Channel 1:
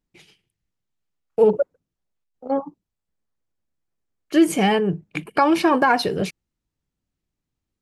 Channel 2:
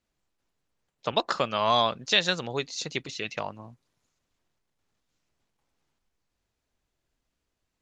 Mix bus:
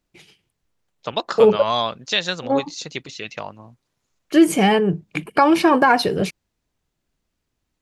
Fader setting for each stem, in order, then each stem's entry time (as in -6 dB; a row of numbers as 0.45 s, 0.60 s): +2.5 dB, +1.5 dB; 0.00 s, 0.00 s